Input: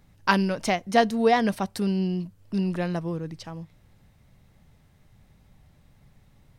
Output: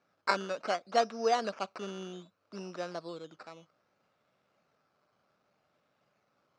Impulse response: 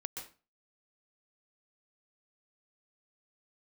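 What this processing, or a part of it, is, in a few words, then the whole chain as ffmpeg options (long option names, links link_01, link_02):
circuit-bent sampling toy: -filter_complex "[0:a]asettb=1/sr,asplit=3[link_01][link_02][link_03];[link_01]atrim=end=1.624[link_04];[link_02]atrim=start=1.62:end=2.7,asetpts=PTS-STARTPTS,afade=type=in:duration=0.004:curve=qsin,afade=type=out:start_time=1.076:duration=0.004:curve=qsin,equalizer=frequency=1200:width_type=o:width=1.2:gain=3.5[link_05];[link_03]atrim=start=2.696[link_06];[link_04][link_05]acrossfade=duration=0.004:curve1=hsin:curve2=qsin[link_07];[link_07][link_06]acrossfade=duration=0.004:curve1=qsin:curve2=hsin,acrusher=samples=11:mix=1:aa=0.000001:lfo=1:lforange=6.6:lforate=0.64,highpass=420,equalizer=frequency=600:width_type=q:width=4:gain=4,equalizer=frequency=890:width_type=q:width=4:gain=-4,equalizer=frequency=1300:width_type=q:width=4:gain=7,equalizer=frequency=1900:width_type=q:width=4:gain=-7,equalizer=frequency=3300:width_type=q:width=4:gain=-5,lowpass=frequency=5700:width=0.5412,lowpass=frequency=5700:width=1.3066,volume=-6.5dB"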